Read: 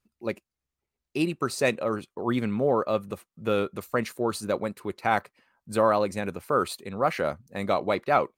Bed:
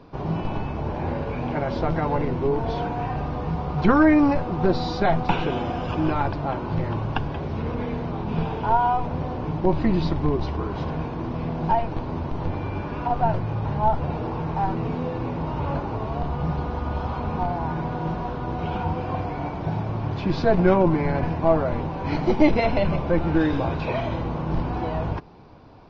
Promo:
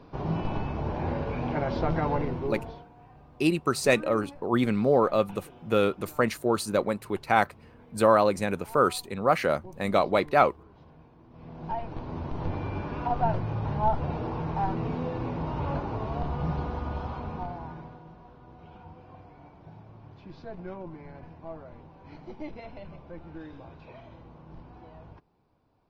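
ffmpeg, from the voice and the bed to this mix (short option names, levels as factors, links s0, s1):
-filter_complex "[0:a]adelay=2250,volume=1.26[s0];[1:a]volume=8.41,afade=t=out:st=2.08:d=0.77:silence=0.0749894,afade=t=in:st=11.29:d=1.21:silence=0.0841395,afade=t=out:st=16.6:d=1.45:silence=0.125893[s1];[s0][s1]amix=inputs=2:normalize=0"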